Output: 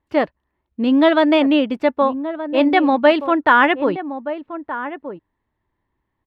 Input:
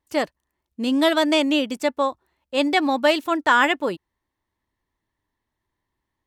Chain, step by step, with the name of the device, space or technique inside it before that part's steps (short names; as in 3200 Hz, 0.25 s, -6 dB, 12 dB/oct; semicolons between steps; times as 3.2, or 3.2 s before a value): shout across a valley (air absorption 400 m; outdoor echo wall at 210 m, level -11 dB); gain +6.5 dB